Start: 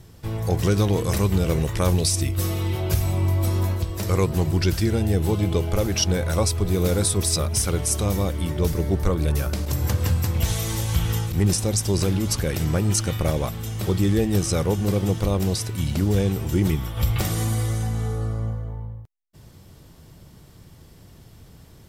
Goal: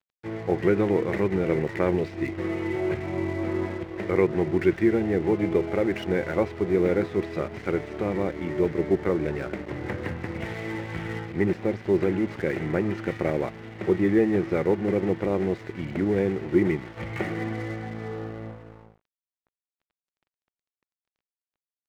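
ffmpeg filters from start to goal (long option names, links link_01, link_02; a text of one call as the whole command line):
ffmpeg -i in.wav -af "highpass=200,equalizer=frequency=360:width_type=q:width=4:gain=8,equalizer=frequency=1100:width_type=q:width=4:gain=-6,equalizer=frequency=2000:width_type=q:width=4:gain=9,lowpass=frequency=2200:width=0.5412,lowpass=frequency=2200:width=1.3066,aeval=exprs='sgn(val(0))*max(abs(val(0))-0.00708,0)':channel_layout=same" out.wav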